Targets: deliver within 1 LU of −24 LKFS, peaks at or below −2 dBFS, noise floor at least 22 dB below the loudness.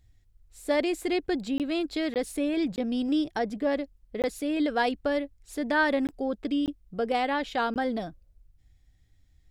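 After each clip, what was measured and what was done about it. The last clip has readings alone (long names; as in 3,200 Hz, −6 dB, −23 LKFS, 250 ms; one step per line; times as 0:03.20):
number of dropouts 7; longest dropout 18 ms; integrated loudness −28.5 LKFS; sample peak −13.0 dBFS; target loudness −24.0 LKFS
→ repair the gap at 0:01.58/0:02.14/0:02.76/0:04.22/0:06.07/0:06.66/0:07.74, 18 ms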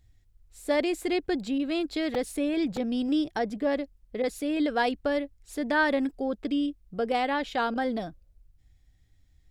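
number of dropouts 0; integrated loudness −28.5 LKFS; sample peak −13.0 dBFS; target loudness −24.0 LKFS
→ level +4.5 dB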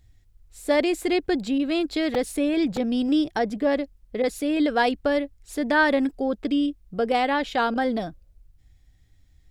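integrated loudness −24.0 LKFS; sample peak −8.5 dBFS; background noise floor −58 dBFS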